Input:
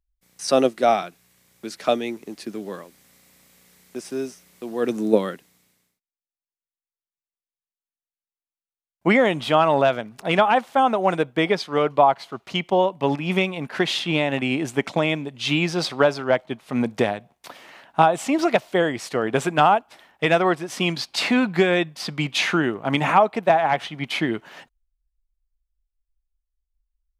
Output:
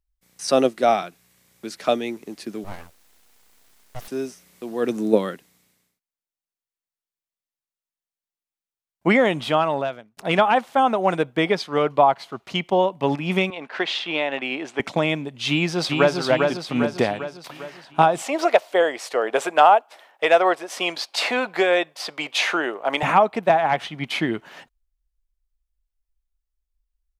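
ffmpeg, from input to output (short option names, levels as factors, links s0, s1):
-filter_complex "[0:a]asettb=1/sr,asplit=3[s0][s1][s2];[s0]atrim=end=2.644[s3];[s1]atrim=start=2.64:end=4.08,asetpts=PTS-STARTPTS,afade=t=in:d=0.004:c=qsin,afade=t=out:st=1.436:d=0.004:c=qsin,aeval=exprs='abs(val(0))':c=same[s4];[s2]atrim=start=4.076[s5];[s3][s4]acrossfade=d=0.004:c1=hsin:c2=qsin[s6];[s6][s5]acrossfade=d=0.004:c1=qsin:c2=hsin,asettb=1/sr,asplit=3[s7][s8][s9];[s7]atrim=end=13.504[s10];[s8]atrim=start=13.5:end=14.8,asetpts=PTS-STARTPTS,afade=t=in:d=0.004:c=qsin,afade=t=out:st=1.296:d=0.004:c=qsin,highpass=420,lowpass=4500[s11];[s9]atrim=start=14.796[s12];[s10][s11]acrossfade=d=0.004:c1=hsin:c2=qsin[s13];[s13][s12]acrossfade=d=0.004:c1=qsin:c2=hsin,asplit=2[s14][s15];[s15]afade=t=in:st=15.49:d=0.01,afade=t=out:st=16.17:d=0.01,aecho=0:1:400|800|1200|1600|2000|2400|2800|3200:0.668344|0.367589|0.202174|0.111196|0.0611576|0.0336367|0.0185002|0.0101751[s16];[s14][s16]amix=inputs=2:normalize=0,asettb=1/sr,asplit=3[s17][s18][s19];[s17]atrim=end=18.224[s20];[s18]atrim=start=18.22:end=23.03,asetpts=PTS-STARTPTS,afade=t=in:d=0.004:c=qsin,afade=t=out:st=4.806:d=0.004:c=qsin,highpass=f=540:t=q:w=1.6[s21];[s19]atrim=start=23.026[s22];[s20][s21]acrossfade=d=0.004:c1=hsin:c2=qsin[s23];[s23][s22]acrossfade=d=0.004:c1=qsin:c2=hsin,asplit=2[s24][s25];[s24]atrim=end=10.17,asetpts=PTS-STARTPTS,afade=t=out:st=9.4:d=0.77[s26];[s25]atrim=start=10.17,asetpts=PTS-STARTPTS,afade=t=in:d=0.004:c=hsin[s27];[s26][s27]concat=n=2:v=0:a=1"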